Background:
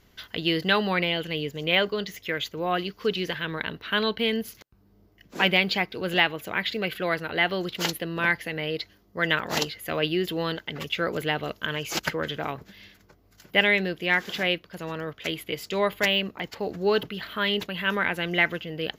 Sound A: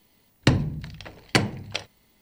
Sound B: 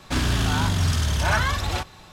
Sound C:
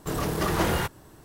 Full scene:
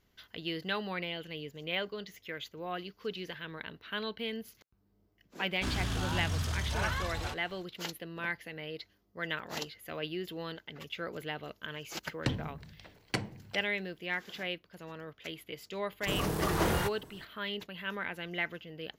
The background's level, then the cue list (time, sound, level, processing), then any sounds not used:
background -12 dB
5.51 add B -11.5 dB
11.79 add A -13 dB
16.01 add C -4.5 dB

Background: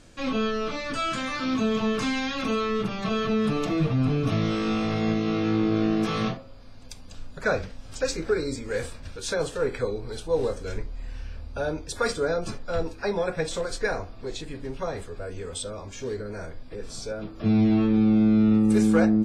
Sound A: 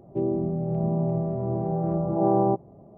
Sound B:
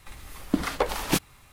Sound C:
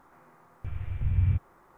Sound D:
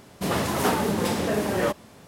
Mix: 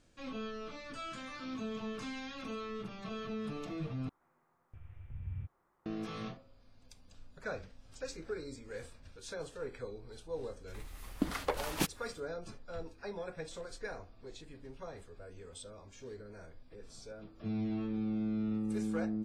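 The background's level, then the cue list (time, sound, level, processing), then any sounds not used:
background -15.5 dB
4.09 replace with C -17 dB
10.68 add B -8.5 dB
not used: A, D

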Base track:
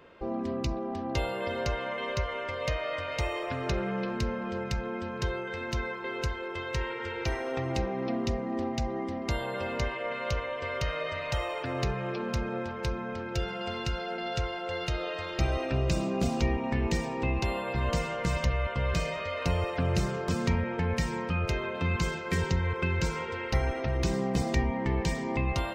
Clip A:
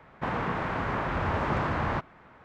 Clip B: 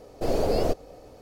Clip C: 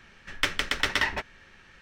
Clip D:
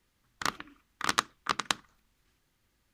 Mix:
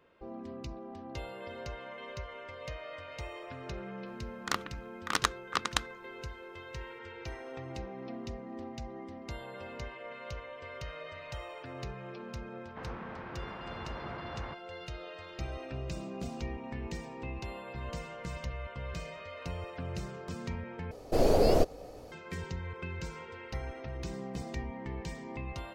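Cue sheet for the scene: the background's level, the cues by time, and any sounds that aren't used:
base track -11 dB
4.06 add D -1.5 dB
12.54 add A -15 dB + LPF 5000 Hz 24 dB/oct
20.91 replace with B
not used: C

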